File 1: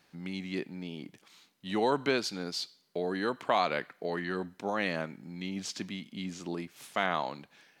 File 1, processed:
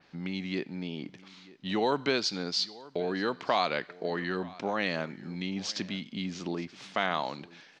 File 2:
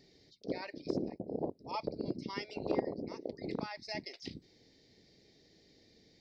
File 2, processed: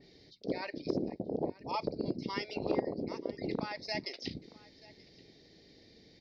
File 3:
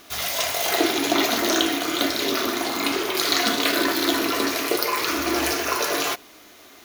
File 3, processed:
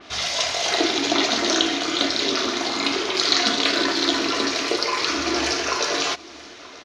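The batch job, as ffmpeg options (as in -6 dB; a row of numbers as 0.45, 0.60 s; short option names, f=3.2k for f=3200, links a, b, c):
-filter_complex "[0:a]lowpass=f=5.6k:w=0.5412,lowpass=f=5.6k:w=1.3066,asplit=2[a][b];[b]acompressor=threshold=-38dB:ratio=6,volume=2dB[c];[a][c]amix=inputs=2:normalize=0,aecho=1:1:931:0.0891,adynamicequalizer=threshold=0.0112:dfrequency=3700:dqfactor=0.7:tfrequency=3700:tqfactor=0.7:attack=5:release=100:ratio=0.375:range=4:mode=boostabove:tftype=highshelf,volume=-2dB"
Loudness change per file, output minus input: +1.5, +2.5, +1.0 LU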